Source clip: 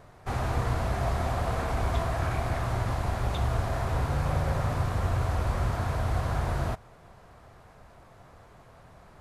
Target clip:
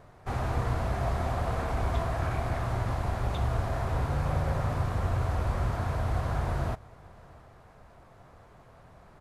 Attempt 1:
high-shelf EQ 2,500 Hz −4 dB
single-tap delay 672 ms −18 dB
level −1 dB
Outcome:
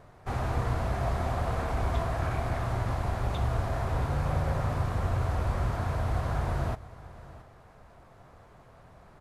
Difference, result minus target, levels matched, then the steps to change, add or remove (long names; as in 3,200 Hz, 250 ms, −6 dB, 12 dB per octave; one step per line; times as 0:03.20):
echo-to-direct +6.5 dB
change: single-tap delay 672 ms −24.5 dB